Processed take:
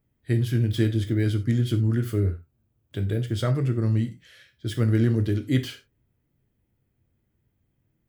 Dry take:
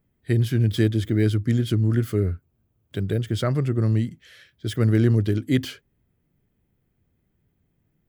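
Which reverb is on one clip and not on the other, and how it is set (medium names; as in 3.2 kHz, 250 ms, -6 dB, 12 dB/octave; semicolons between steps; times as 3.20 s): gated-style reverb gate 120 ms falling, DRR 5.5 dB; trim -3.5 dB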